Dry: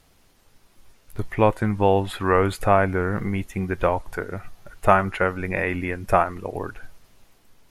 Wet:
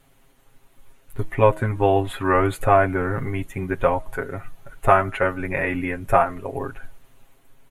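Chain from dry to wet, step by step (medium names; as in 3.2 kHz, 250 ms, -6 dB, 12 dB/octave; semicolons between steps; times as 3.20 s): peaking EQ 5.1 kHz -11.5 dB 0.61 oct; comb 7.4 ms, depth 83%; de-hum 158.4 Hz, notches 4; trim -1 dB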